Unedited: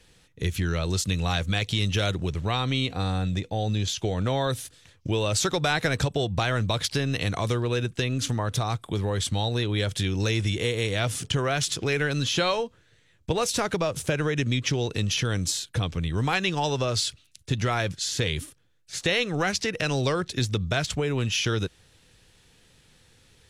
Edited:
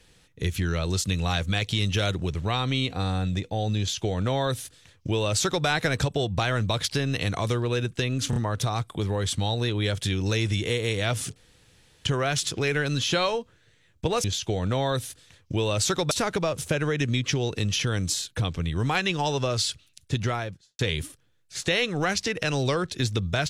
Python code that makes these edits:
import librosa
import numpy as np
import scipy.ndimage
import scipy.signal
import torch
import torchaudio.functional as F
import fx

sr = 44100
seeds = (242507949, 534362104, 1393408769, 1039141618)

y = fx.studio_fade_out(x, sr, start_s=17.54, length_s=0.63)
y = fx.edit(y, sr, fx.duplicate(start_s=3.79, length_s=1.87, to_s=13.49),
    fx.stutter(start_s=8.3, slice_s=0.03, count=3),
    fx.insert_room_tone(at_s=11.3, length_s=0.69), tone=tone)